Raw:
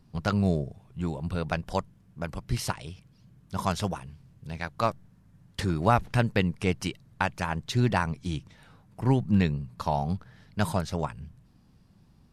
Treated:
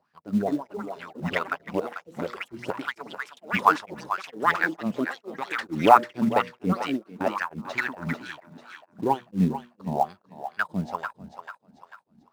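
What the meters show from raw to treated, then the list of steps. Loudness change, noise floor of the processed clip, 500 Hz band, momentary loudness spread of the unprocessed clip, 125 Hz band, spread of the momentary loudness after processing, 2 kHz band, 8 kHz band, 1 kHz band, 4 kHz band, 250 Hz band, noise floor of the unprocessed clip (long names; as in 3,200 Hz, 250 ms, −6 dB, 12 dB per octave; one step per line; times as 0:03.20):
+2.0 dB, −67 dBFS, +2.5 dB, 15 LU, −7.5 dB, 15 LU, +6.5 dB, can't be measured, +7.0 dB, −0.5 dB, +1.0 dB, −60 dBFS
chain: LFO wah 2.2 Hz 210–1,700 Hz, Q 5.3
high-pass filter 57 Hz 12 dB per octave
high-shelf EQ 2,800 Hz +10.5 dB
hum removal 120.5 Hz, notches 5
on a send: feedback echo with a high-pass in the loop 443 ms, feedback 45%, high-pass 590 Hz, level −9 dB
on the sum: delay with pitch and tempo change per echo 288 ms, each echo +6 semitones, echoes 2, each echo −6 dB
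in parallel at −7.5 dB: floating-point word with a short mantissa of 2 bits
on the sum: parametric band 110 Hz −4 dB 0.69 octaves
automatic gain control gain up to 7 dB
tremolo along a rectified sine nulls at 2.2 Hz
level +5.5 dB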